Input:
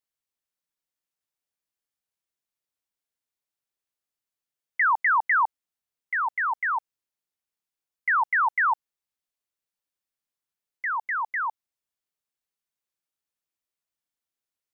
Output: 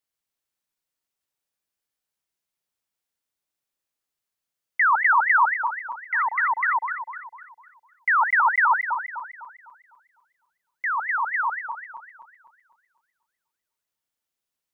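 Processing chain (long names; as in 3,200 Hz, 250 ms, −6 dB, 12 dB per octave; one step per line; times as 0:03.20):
feedback delay that plays each chunk backwards 126 ms, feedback 64%, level −7 dB
level +2.5 dB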